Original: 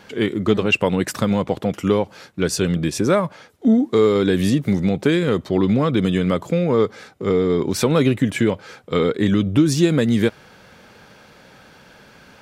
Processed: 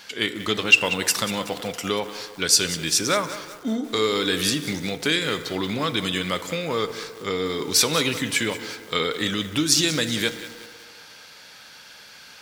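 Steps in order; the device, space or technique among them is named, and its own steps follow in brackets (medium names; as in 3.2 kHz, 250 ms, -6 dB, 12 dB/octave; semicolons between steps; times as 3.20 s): tilt shelf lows -8.5 dB, about 900 Hz; presence and air boost (peaking EQ 4.6 kHz +5.5 dB 1 oct; treble shelf 9.1 kHz +5 dB); FDN reverb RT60 2.1 s, low-frequency decay 0.7×, high-frequency decay 0.35×, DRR 10.5 dB; bit-crushed delay 187 ms, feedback 55%, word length 5-bit, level -13.5 dB; trim -4 dB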